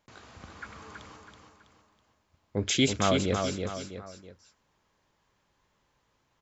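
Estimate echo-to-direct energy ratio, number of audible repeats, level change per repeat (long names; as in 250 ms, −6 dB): −4.0 dB, 3, −7.5 dB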